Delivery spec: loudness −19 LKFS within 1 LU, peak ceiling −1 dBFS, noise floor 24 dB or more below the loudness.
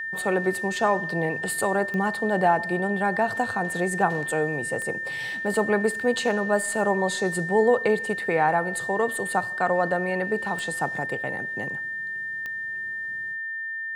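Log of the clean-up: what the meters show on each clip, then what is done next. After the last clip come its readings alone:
number of clicks 4; interfering tone 1,800 Hz; level of the tone −29 dBFS; integrated loudness −25.0 LKFS; sample peak −8.0 dBFS; target loudness −19.0 LKFS
→ click removal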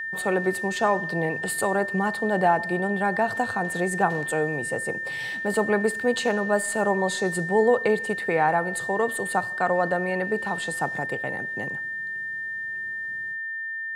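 number of clicks 0; interfering tone 1,800 Hz; level of the tone −29 dBFS
→ notch filter 1,800 Hz, Q 30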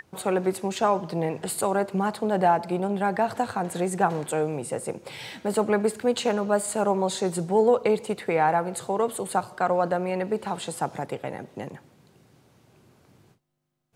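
interfering tone none found; integrated loudness −26.0 LKFS; sample peak −8.5 dBFS; target loudness −19.0 LKFS
→ level +7 dB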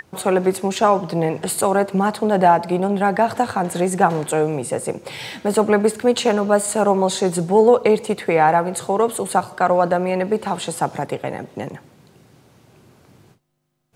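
integrated loudness −19.0 LKFS; sample peak −1.5 dBFS; background noise floor −54 dBFS

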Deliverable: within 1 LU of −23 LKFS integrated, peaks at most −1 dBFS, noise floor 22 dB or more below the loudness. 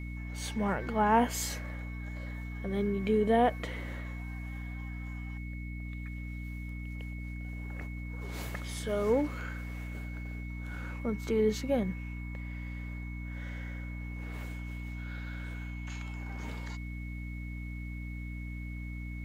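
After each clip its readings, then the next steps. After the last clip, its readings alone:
mains hum 60 Hz; hum harmonics up to 300 Hz; level of the hum −37 dBFS; interfering tone 2,200 Hz; level of the tone −48 dBFS; integrated loudness −35.5 LKFS; sample peak −12.5 dBFS; target loudness −23.0 LKFS
→ mains-hum notches 60/120/180/240/300 Hz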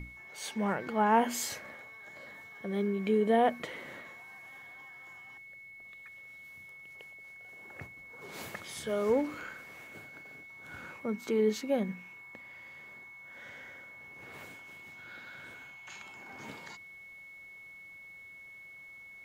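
mains hum none found; interfering tone 2,200 Hz; level of the tone −48 dBFS
→ notch filter 2,200 Hz, Q 30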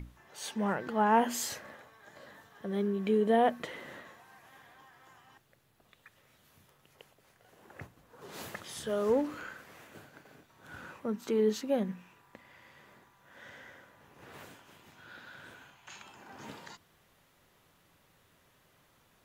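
interfering tone none found; integrated loudness −31.5 LKFS; sample peak −12.5 dBFS; target loudness −23.0 LKFS
→ level +8.5 dB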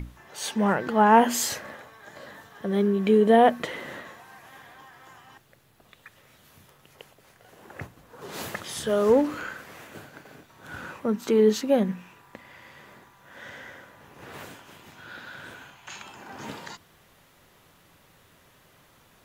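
integrated loudness −23.0 LKFS; sample peak −4.0 dBFS; background noise floor −59 dBFS

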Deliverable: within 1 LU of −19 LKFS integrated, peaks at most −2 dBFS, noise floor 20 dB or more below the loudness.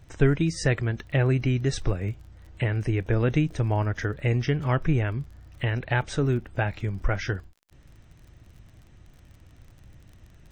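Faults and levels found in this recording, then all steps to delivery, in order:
crackle rate 36 per second; integrated loudness −26.5 LKFS; sample peak −6.5 dBFS; target loudness −19.0 LKFS
→ click removal
level +7.5 dB
brickwall limiter −2 dBFS

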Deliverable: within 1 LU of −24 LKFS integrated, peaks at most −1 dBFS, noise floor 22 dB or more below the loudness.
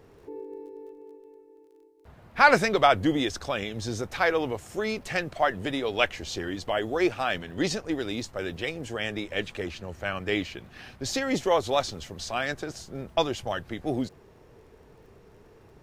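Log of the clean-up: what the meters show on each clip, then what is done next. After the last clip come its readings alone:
crackle rate 24 per second; integrated loudness −27.5 LKFS; sample peak −4.0 dBFS; target loudness −24.0 LKFS
→ click removal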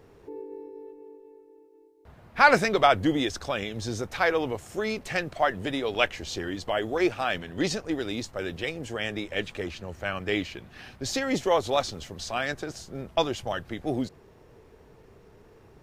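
crackle rate 0 per second; integrated loudness −28.0 LKFS; sample peak −4.0 dBFS; target loudness −24.0 LKFS
→ level +4 dB
brickwall limiter −1 dBFS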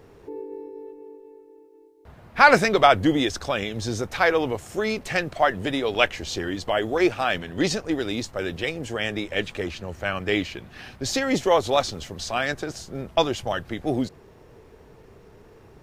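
integrated loudness −24.0 LKFS; sample peak −1.0 dBFS; background noise floor −51 dBFS

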